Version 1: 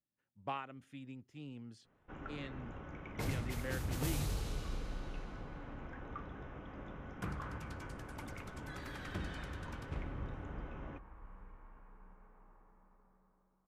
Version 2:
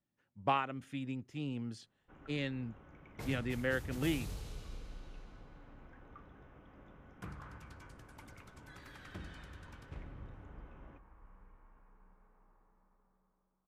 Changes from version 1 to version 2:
speech +9.0 dB; first sound -9.5 dB; second sound -5.5 dB

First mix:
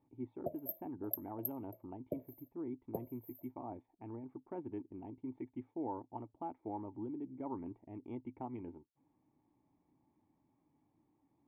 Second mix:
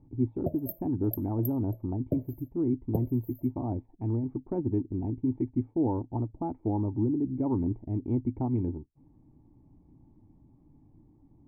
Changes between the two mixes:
speech +4.0 dB; master: remove frequency weighting ITU-R 468

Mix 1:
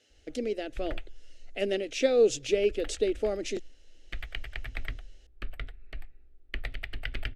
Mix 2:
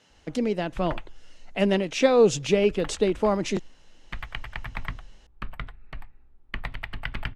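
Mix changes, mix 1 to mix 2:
speech +3.5 dB; master: remove static phaser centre 410 Hz, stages 4

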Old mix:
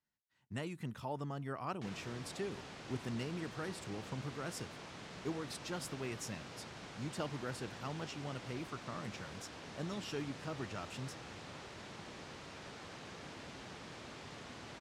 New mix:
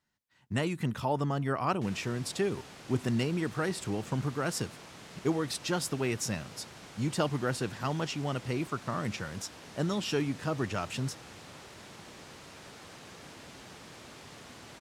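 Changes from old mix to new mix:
speech +11.0 dB; background: remove distance through air 64 m

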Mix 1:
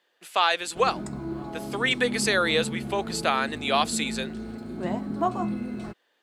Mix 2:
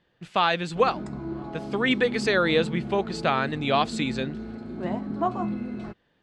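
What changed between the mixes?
speech: remove Bessel high-pass 490 Hz, order 4; master: add distance through air 120 m

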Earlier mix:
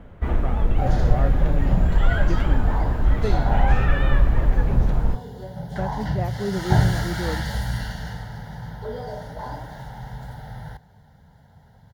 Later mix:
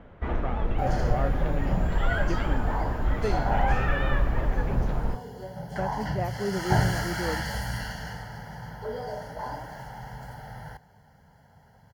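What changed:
first sound: add distance through air 130 m; second sound: add Butterworth band-stop 3.7 kHz, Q 4.7; master: add bass shelf 230 Hz -8 dB

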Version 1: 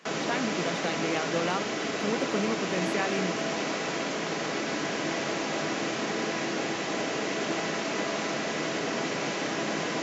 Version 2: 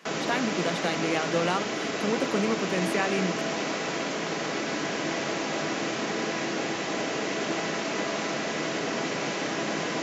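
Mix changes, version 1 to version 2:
speech: remove distance through air 56 m; reverb: on, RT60 0.35 s

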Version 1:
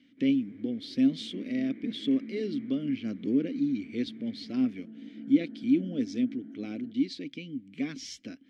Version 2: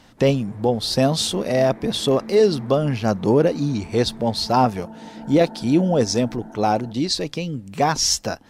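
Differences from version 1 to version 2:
first sound -6.0 dB; second sound -4.0 dB; master: remove vowel filter i

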